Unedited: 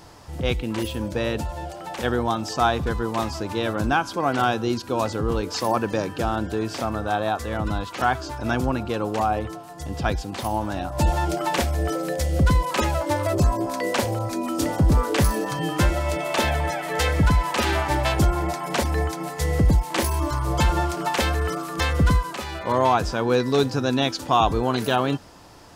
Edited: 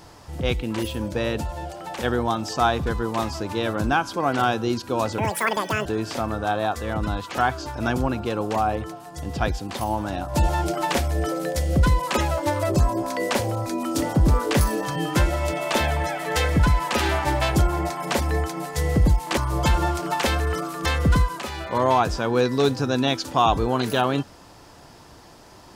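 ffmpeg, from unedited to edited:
-filter_complex "[0:a]asplit=4[s0][s1][s2][s3];[s0]atrim=end=5.184[s4];[s1]atrim=start=5.18:end=6.49,asetpts=PTS-STARTPTS,asetrate=85554,aresample=44100[s5];[s2]atrim=start=6.486:end=20.012[s6];[s3]atrim=start=20.318[s7];[s4][s5]acrossfade=d=0.004:c1=hsin:c2=hsin[s8];[s8][s6]acrossfade=d=0.004:c1=hsin:c2=hsin[s9];[s9][s7]acrossfade=d=0.004:c1=hsin:c2=hsin"

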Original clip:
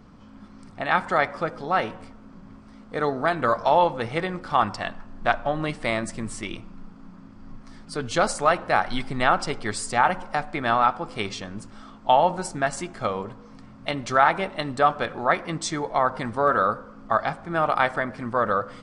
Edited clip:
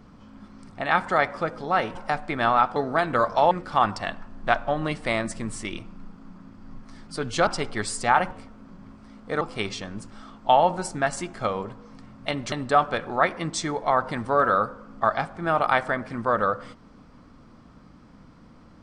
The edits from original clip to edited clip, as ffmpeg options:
-filter_complex "[0:a]asplit=8[s0][s1][s2][s3][s4][s5][s6][s7];[s0]atrim=end=1.952[s8];[s1]atrim=start=10.198:end=11.012[s9];[s2]atrim=start=3.048:end=3.802[s10];[s3]atrim=start=4.288:end=8.252[s11];[s4]atrim=start=9.358:end=10.202[s12];[s5]atrim=start=1.948:end=3.052[s13];[s6]atrim=start=11.008:end=14.122[s14];[s7]atrim=start=14.598[s15];[s8][s9]acrossfade=d=0.004:c1=hsin:c2=hsin[s16];[s16][s10]acrossfade=d=0.004:c1=hsin:c2=hsin[s17];[s17][s11]acrossfade=d=0.004:c1=hsin:c2=hsin[s18];[s18][s12]acrossfade=d=0.004:c1=hsin:c2=hsin[s19];[s19][s13]acrossfade=d=0.004:c1=hsin:c2=hsin[s20];[s20][s14]acrossfade=d=0.004:c1=hsin:c2=hsin[s21];[s21][s15]acrossfade=d=0.004:c1=hsin:c2=hsin"

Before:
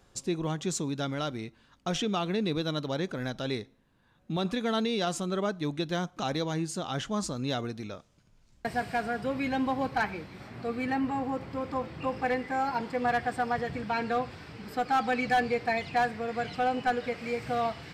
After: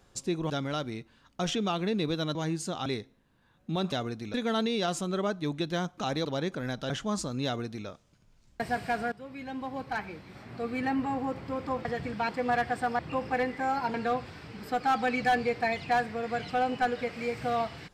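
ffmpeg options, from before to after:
-filter_complex "[0:a]asplit=13[s0][s1][s2][s3][s4][s5][s6][s7][s8][s9][s10][s11][s12];[s0]atrim=end=0.502[s13];[s1]atrim=start=0.968:end=2.822[s14];[s2]atrim=start=6.438:end=6.952[s15];[s3]atrim=start=3.468:end=4.532[s16];[s4]atrim=start=7.498:end=7.922[s17];[s5]atrim=start=4.528:end=6.442[s18];[s6]atrim=start=2.818:end=3.472[s19];[s7]atrim=start=6.948:end=9.17,asetpts=PTS-STARTPTS,afade=t=out:st=2.218:d=0.004:c=hsin:silence=0.16788[s20];[s8]atrim=start=9.17:end=11.902,asetpts=PTS-STARTPTS,afade=t=in:d=1.74:silence=0.16788[s21];[s9]atrim=start=13.548:end=13.992[s22];[s10]atrim=start=12.848:end=13.552[s23];[s11]atrim=start=11.898:end=12.852[s24];[s12]atrim=start=13.988[s25];[s13][s14]acrossfade=d=0.004:c1=hsin:c2=hsin[s26];[s26][s15]acrossfade=d=0.004:c1=hsin:c2=hsin[s27];[s27][s16]acrossfade=d=0.004:c1=hsin:c2=hsin[s28];[s28][s17]acrossfade=d=0.004:c1=hsin:c2=hsin[s29];[s29][s18]acrossfade=d=0.004:c1=hsin:c2=hsin[s30];[s30][s19]acrossfade=d=0.004:c1=hsin:c2=hsin[s31];[s20][s21]concat=n=2:v=0:a=1[s32];[s31][s32]acrossfade=d=0.004:c1=hsin:c2=hsin[s33];[s33][s22]acrossfade=d=0.004:c1=hsin:c2=hsin[s34];[s34][s23]acrossfade=d=0.004:c1=hsin:c2=hsin[s35];[s35][s24]acrossfade=d=0.004:c1=hsin:c2=hsin[s36];[s36][s25]acrossfade=d=0.004:c1=hsin:c2=hsin"

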